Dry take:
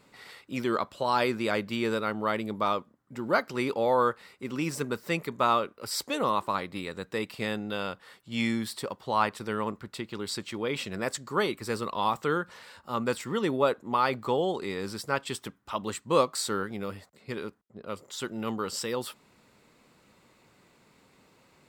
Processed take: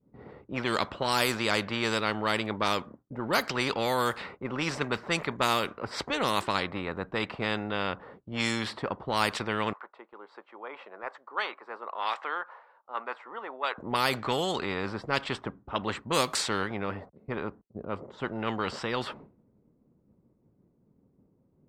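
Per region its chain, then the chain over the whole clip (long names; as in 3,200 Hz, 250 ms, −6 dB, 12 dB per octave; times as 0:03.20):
0:09.73–0:13.78: high-pass filter 900 Hz 24 dB per octave + spectral tilt −3.5 dB per octave
whole clip: downward expander −50 dBFS; low-pass that shuts in the quiet parts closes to 310 Hz, open at −21.5 dBFS; every bin compressed towards the loudest bin 2 to 1; level +1.5 dB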